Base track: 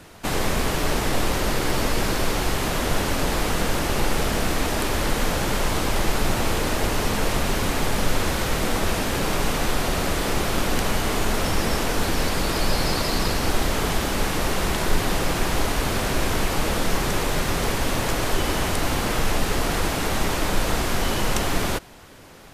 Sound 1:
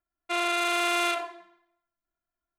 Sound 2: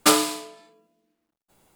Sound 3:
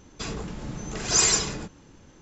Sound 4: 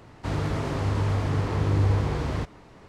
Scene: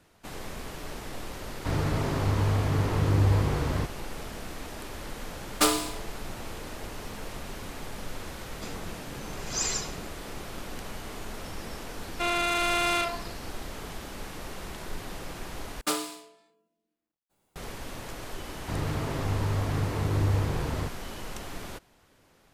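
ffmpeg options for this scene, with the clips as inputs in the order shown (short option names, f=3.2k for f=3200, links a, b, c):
-filter_complex "[4:a]asplit=2[a][b];[2:a]asplit=2[c][d];[0:a]volume=-16dB,asplit=2[e][f];[e]atrim=end=15.814[g];[d]atrim=end=1.75,asetpts=PTS-STARTPTS,volume=-11.5dB[h];[f]atrim=start=17.556[i];[a]atrim=end=2.88,asetpts=PTS-STARTPTS,volume=-0.5dB,afade=t=in:d=0.004:c=hsin,afade=t=out:st=2.876:d=0.004:c=hsin,adelay=1410[j];[c]atrim=end=1.75,asetpts=PTS-STARTPTS,volume=-5.5dB,afade=t=in:d=0.004:c=hsin,afade=t=out:st=1.746:d=0.004:c=hsin,adelay=5550[k];[3:a]atrim=end=2.21,asetpts=PTS-STARTPTS,volume=-9.5dB,afade=t=in:d=0.004:c=hsin,afade=t=out:st=2.206:d=0.004:c=hsin,adelay=371322S[l];[1:a]atrim=end=2.58,asetpts=PTS-STARTPTS,volume=-0.5dB,afade=t=in:d=0.004:c=hsin,afade=t=out:st=2.576:d=0.004:c=hsin,adelay=11900[m];[b]atrim=end=2.88,asetpts=PTS-STARTPTS,volume=-3.5dB,afade=t=in:d=0.004:c=hsin,afade=t=out:st=2.876:d=0.004:c=hsin,adelay=813204S[n];[g][h]acrossfade=d=0.004:c1=hsin:c2=hsin[o];[o][i]acrossfade=d=0.004:c1=hsin:c2=hsin[p];[p][j][k][l][m][n]amix=inputs=6:normalize=0"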